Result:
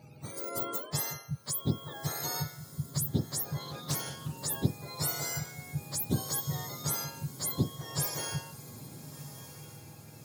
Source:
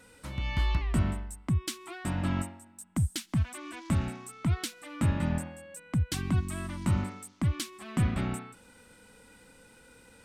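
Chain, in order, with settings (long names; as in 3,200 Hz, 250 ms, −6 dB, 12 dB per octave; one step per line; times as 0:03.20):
frequency axis turned over on the octave scale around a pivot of 1,100 Hz
feedback delay with all-pass diffusion 1,309 ms, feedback 50%, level −14.5 dB
0:03.59–0:04.38: highs frequency-modulated by the lows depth 0.4 ms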